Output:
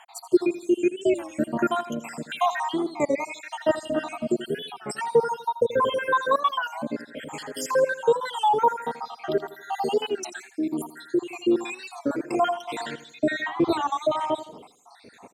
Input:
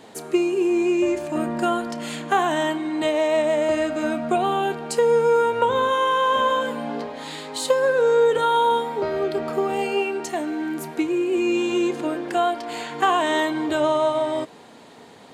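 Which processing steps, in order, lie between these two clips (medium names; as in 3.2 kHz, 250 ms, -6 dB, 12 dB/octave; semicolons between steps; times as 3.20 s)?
random holes in the spectrogram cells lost 75%; 13.01–13.66 s: RIAA curve playback; feedback delay 82 ms, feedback 43%, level -14 dB; warped record 33 1/3 rpm, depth 160 cents; trim +2.5 dB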